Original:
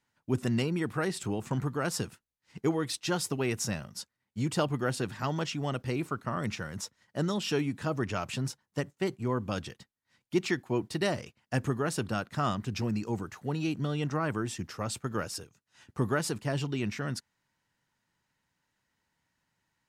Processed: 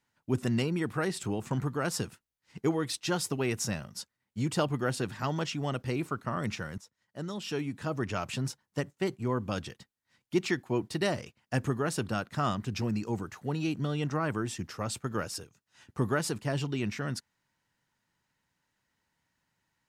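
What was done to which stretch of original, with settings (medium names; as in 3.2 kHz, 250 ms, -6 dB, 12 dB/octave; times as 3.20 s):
6.78–8.20 s: fade in, from -17 dB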